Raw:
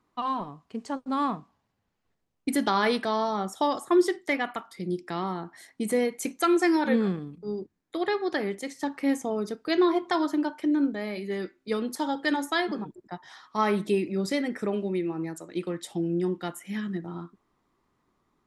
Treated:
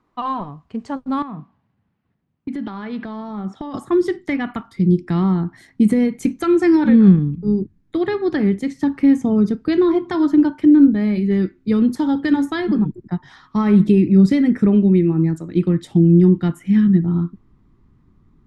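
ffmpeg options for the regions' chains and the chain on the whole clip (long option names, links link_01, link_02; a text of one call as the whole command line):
ffmpeg -i in.wav -filter_complex "[0:a]asettb=1/sr,asplit=3[link_01][link_02][link_03];[link_01]atrim=end=1.224[link_04];[link_02]atrim=start=1.22:end=3.74,asetpts=PTS-STARTPTS,afade=type=in:duration=0.004:curve=qsin,afade=type=out:start_time=2.516:duration=0.004:curve=qsin,highpass=150,lowpass=3600,acompressor=threshold=-34dB:ratio=6:attack=3.2:release=140:knee=1:detection=peak[link_05];[link_03]atrim=start=3.736[link_06];[link_04][link_05]acrossfade=duration=0.004:curve1=hsin:curve2=qsin[link_07];[link_07][link_06]acrossfade=duration=0.004:curve1=qsin:curve2=hsin,alimiter=limit=-18dB:level=0:latency=1:release=133,asubboost=boost=11:cutoff=180,lowpass=frequency=2400:poles=1,volume=6.5dB" out.wav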